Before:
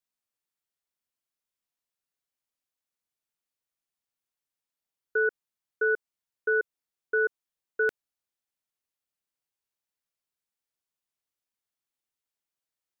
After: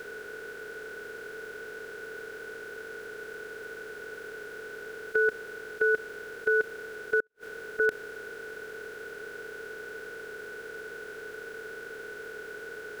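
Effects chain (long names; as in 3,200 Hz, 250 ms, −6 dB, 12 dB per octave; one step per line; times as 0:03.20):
compressor on every frequency bin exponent 0.2
0:07.20–0:07.80: gate with flip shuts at −26 dBFS, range −42 dB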